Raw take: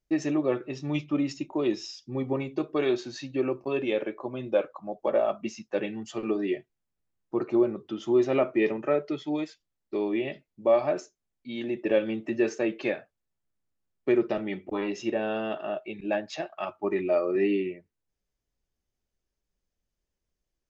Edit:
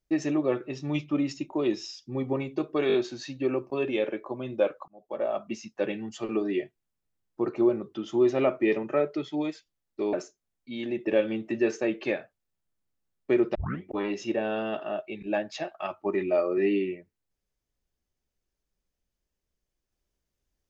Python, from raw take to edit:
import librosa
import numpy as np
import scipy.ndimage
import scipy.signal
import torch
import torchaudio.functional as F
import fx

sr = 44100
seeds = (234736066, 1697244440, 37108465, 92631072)

y = fx.edit(x, sr, fx.stutter(start_s=2.88, slice_s=0.02, count=4),
    fx.fade_in_span(start_s=4.82, length_s=0.94, curve='qsin'),
    fx.cut(start_s=10.07, length_s=0.84),
    fx.tape_start(start_s=14.33, length_s=0.26), tone=tone)